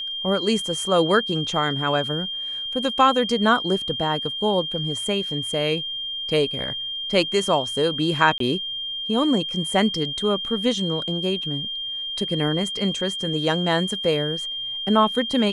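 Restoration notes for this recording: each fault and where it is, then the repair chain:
tone 3200 Hz -27 dBFS
8.38–8.4 gap 23 ms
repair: notch 3200 Hz, Q 30; interpolate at 8.38, 23 ms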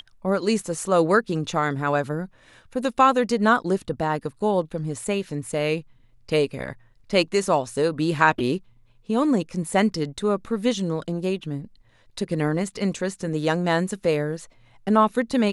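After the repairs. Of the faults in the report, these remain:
none

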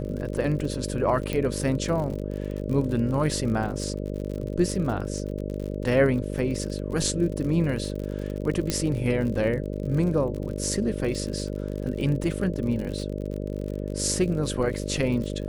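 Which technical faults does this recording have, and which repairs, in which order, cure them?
buzz 50 Hz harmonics 12 -31 dBFS
crackle 54/s -32 dBFS
1.33 pop -14 dBFS
8.7 pop -10 dBFS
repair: de-click; de-hum 50 Hz, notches 12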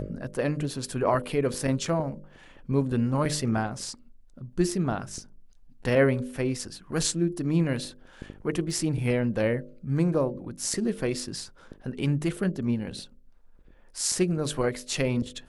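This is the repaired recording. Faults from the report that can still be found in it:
8.7 pop

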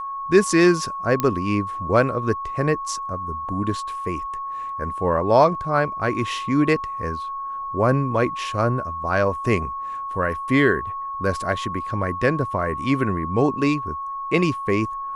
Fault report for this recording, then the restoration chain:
tone 1100 Hz -27 dBFS
1.2 pop -7 dBFS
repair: de-click; notch 1100 Hz, Q 30

